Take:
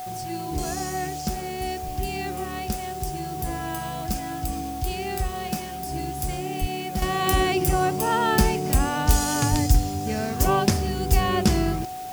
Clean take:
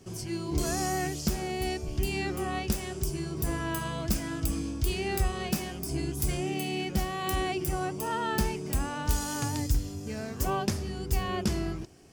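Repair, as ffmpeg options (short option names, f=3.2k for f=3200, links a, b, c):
-filter_complex "[0:a]bandreject=f=740:w=30,asplit=3[a][b][c];[a]afade=t=out:st=6.6:d=0.02[d];[b]highpass=f=140:w=0.5412,highpass=f=140:w=1.3066,afade=t=in:st=6.6:d=0.02,afade=t=out:st=6.72:d=0.02[e];[c]afade=t=in:st=6.72:d=0.02[f];[d][e][f]amix=inputs=3:normalize=0,asplit=3[g][h][i];[g]afade=t=out:st=9.5:d=0.02[j];[h]highpass=f=140:w=0.5412,highpass=f=140:w=1.3066,afade=t=in:st=9.5:d=0.02,afade=t=out:st=9.62:d=0.02[k];[i]afade=t=in:st=9.62:d=0.02[l];[j][k][l]amix=inputs=3:normalize=0,afwtdn=0.0056,asetnsamples=n=441:p=0,asendcmd='7.02 volume volume -8.5dB',volume=0dB"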